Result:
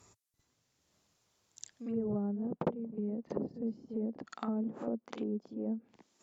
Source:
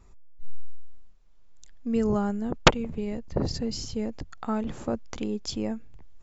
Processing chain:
bass and treble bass −10 dB, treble +11 dB
on a send: backwards echo 54 ms −10 dB
on the sum: dynamic equaliser 300 Hz, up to −5 dB, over −47 dBFS, Q 2.9
in parallel at +3 dB: downward compressor 6 to 1, threshold −37 dBFS, peak gain reduction 25 dB
on the sum: high-pass filter sweep 110 Hz → 220 Hz, 0:01.85–0:02.94
gain into a clipping stage and back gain 1.5 dB
treble cut that deepens with the level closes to 470 Hz, closed at −23 dBFS
level −8.5 dB

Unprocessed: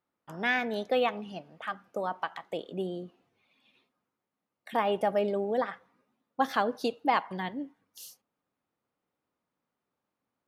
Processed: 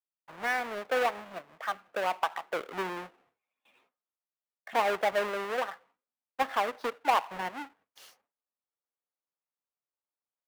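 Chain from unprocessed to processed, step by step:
each half-wave held at its own peak
speech leveller within 4 dB 2 s
noise gate with hold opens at −55 dBFS
three-way crossover with the lows and the highs turned down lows −16 dB, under 470 Hz, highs −15 dB, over 2,800 Hz
level −1.5 dB

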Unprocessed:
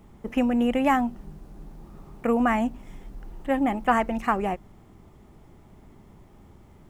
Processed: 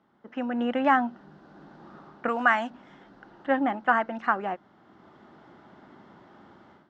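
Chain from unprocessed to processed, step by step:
0:02.28–0:02.70: spectral tilt +3.5 dB per octave
automatic gain control gain up to 15 dB
loudspeaker in its box 280–4,500 Hz, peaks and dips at 430 Hz −6 dB, 1,500 Hz +9 dB, 2,400 Hz −8 dB
level −9 dB

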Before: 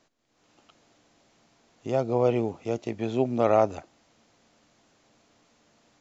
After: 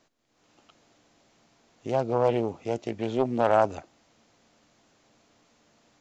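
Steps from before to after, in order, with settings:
highs frequency-modulated by the lows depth 0.29 ms

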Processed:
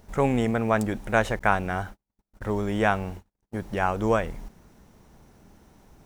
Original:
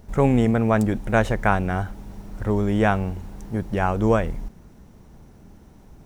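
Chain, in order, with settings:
0:01.39–0:03.59: noise gate −30 dBFS, range −47 dB
low-shelf EQ 400 Hz −8 dB

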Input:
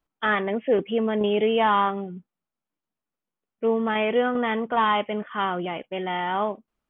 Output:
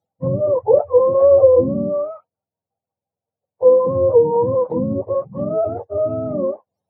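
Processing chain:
frequency axis turned over on the octave scale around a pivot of 480 Hz
treble cut that deepens with the level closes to 520 Hz, closed at −17.5 dBFS
flat-topped bell 630 Hz +15.5 dB 1.1 octaves
level −1 dB

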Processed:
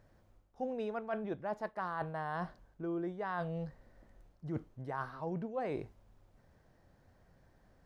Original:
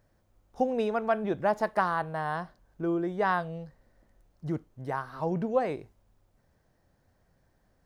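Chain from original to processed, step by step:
high-shelf EQ 6,300 Hz −9 dB
reversed playback
downward compressor 8 to 1, threshold −38 dBFS, peak gain reduction 17.5 dB
reversed playback
level +3 dB

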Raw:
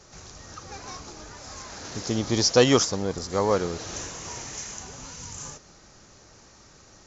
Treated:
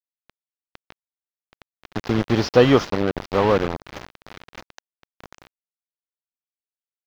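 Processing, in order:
in parallel at −0.5 dB: downward compressor 10 to 1, threshold −34 dBFS, peak gain reduction 21.5 dB
on the sum: bit reduction 4 bits
high-frequency loss of the air 320 metres
level +4 dB

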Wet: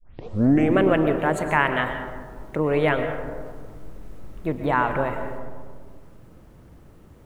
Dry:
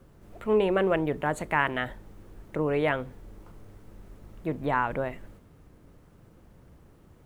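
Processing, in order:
turntable start at the beginning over 0.78 s
on a send: convolution reverb RT60 1.8 s, pre-delay 80 ms, DRR 6.5 dB
on the sum: level +4.5 dB

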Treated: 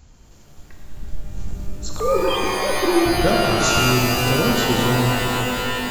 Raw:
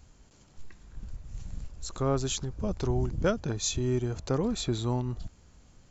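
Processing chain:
0:01.99–0:03.06: three sine waves on the formant tracks
reverb with rising layers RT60 3.6 s, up +12 semitones, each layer −2 dB, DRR −0.5 dB
level +5.5 dB

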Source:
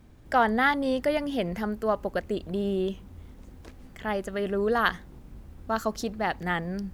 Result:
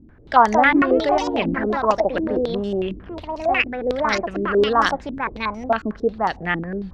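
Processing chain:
delay with pitch and tempo change per echo 272 ms, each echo +4 semitones, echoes 2
tape wow and flutter 28 cents
low-pass on a step sequencer 11 Hz 300–5,900 Hz
level +2.5 dB

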